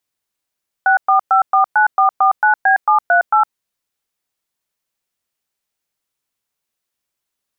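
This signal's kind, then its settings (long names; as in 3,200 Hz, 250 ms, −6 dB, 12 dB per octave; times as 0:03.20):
touch tones "64549449B738", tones 111 ms, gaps 113 ms, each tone −11.5 dBFS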